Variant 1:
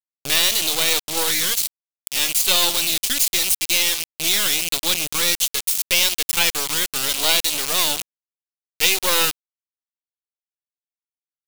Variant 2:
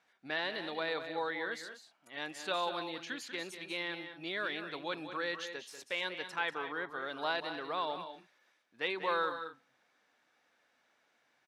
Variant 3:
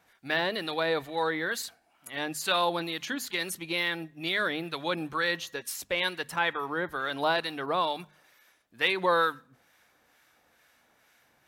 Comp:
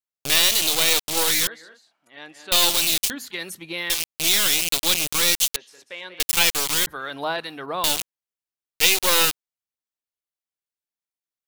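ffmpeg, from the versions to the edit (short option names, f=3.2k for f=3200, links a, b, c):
-filter_complex "[1:a]asplit=2[a][b];[2:a]asplit=2[c][d];[0:a]asplit=5[e][f][g][h][i];[e]atrim=end=1.472[j];[a]atrim=start=1.468:end=2.522[k];[f]atrim=start=2.518:end=3.102[l];[c]atrim=start=3.098:end=3.902[m];[g]atrim=start=3.898:end=5.562[n];[b]atrim=start=5.558:end=6.202[o];[h]atrim=start=6.198:end=6.872[p];[d]atrim=start=6.868:end=7.842[q];[i]atrim=start=7.838[r];[j][k]acrossfade=d=0.004:c1=hsin:c2=hsin[s];[s][l]acrossfade=d=0.004:c1=hsin:c2=hsin[t];[t][m]acrossfade=d=0.004:c1=hsin:c2=hsin[u];[u][n]acrossfade=d=0.004:c1=hsin:c2=hsin[v];[v][o]acrossfade=d=0.004:c1=hsin:c2=hsin[w];[w][p]acrossfade=d=0.004:c1=hsin:c2=hsin[x];[x][q]acrossfade=d=0.004:c1=hsin:c2=hsin[y];[y][r]acrossfade=d=0.004:c1=hsin:c2=hsin"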